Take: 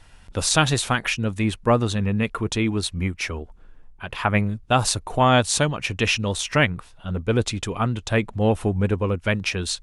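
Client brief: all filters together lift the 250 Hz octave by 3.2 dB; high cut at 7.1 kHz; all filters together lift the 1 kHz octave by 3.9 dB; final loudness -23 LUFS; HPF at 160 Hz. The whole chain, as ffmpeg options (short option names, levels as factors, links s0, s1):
-af "highpass=160,lowpass=7100,equalizer=f=250:t=o:g=5,equalizer=f=1000:t=o:g=5,volume=0.794"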